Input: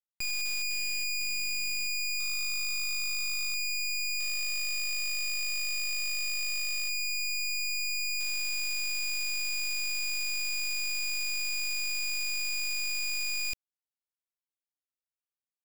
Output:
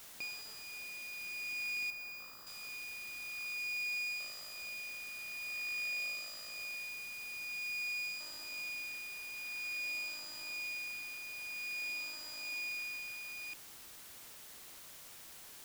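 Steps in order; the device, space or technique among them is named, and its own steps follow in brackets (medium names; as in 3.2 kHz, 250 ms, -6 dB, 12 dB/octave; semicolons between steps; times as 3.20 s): shortwave radio (band-pass 300–2800 Hz; tremolo 0.49 Hz, depth 67%; LFO notch sine 0.51 Hz 440–2400 Hz; white noise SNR 10 dB); 1.90–2.47 s: high-order bell 4.8 kHz -9 dB 2.7 oct; trim +1 dB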